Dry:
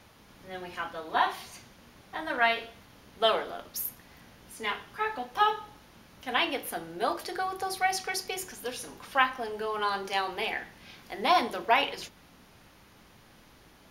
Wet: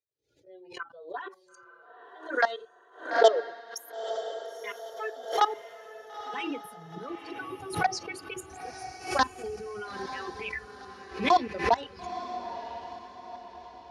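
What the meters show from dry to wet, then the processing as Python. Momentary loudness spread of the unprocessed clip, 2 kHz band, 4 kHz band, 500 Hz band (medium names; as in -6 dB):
17 LU, -3.0 dB, -5.0 dB, +3.0 dB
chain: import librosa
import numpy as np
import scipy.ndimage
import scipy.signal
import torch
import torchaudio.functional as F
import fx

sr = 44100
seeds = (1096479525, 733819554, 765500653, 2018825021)

y = fx.bin_expand(x, sr, power=2.0)
y = fx.fold_sine(y, sr, drive_db=6, ceiling_db=-11.5)
y = scipy.signal.sosfilt(scipy.signal.butter(2, 7400.0, 'lowpass', fs=sr, output='sos'), y)
y = fx.level_steps(y, sr, step_db=17)
y = fx.env_phaser(y, sr, low_hz=190.0, high_hz=2400.0, full_db=-26.5)
y = fx.filter_sweep_highpass(y, sr, from_hz=430.0, to_hz=72.0, start_s=4.79, end_s=8.65, q=3.1)
y = fx.noise_reduce_blind(y, sr, reduce_db=16)
y = fx.echo_diffused(y, sr, ms=931, feedback_pct=45, wet_db=-10.0)
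y = fx.pre_swell(y, sr, db_per_s=130.0)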